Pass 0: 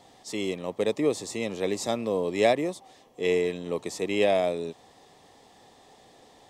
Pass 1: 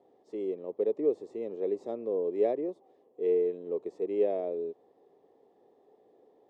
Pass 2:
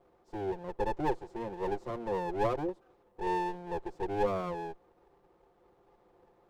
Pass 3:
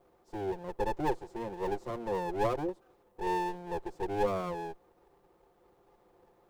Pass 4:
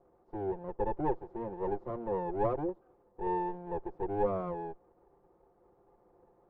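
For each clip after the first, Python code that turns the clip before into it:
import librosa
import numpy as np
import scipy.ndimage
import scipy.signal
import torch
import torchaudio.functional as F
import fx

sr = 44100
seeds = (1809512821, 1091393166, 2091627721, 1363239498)

y1 = fx.bandpass_q(x, sr, hz=410.0, q=3.1)
y2 = fx.lower_of_two(y1, sr, delay_ms=5.7)
y3 = fx.high_shelf(y2, sr, hz=6800.0, db=9.0)
y4 = scipy.signal.sosfilt(scipy.signal.butter(2, 1100.0, 'lowpass', fs=sr, output='sos'), y3)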